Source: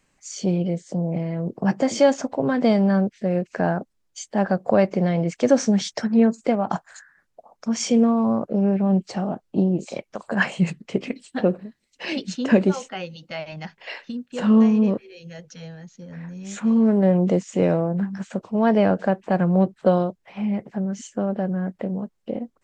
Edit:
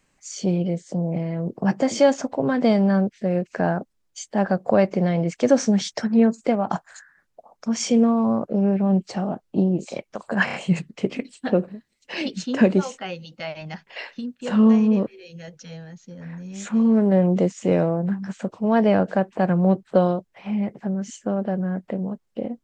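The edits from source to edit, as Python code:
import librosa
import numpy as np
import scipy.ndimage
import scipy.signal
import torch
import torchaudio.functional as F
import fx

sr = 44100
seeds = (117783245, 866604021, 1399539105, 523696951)

y = fx.edit(x, sr, fx.stutter(start_s=10.45, slice_s=0.03, count=4), tone=tone)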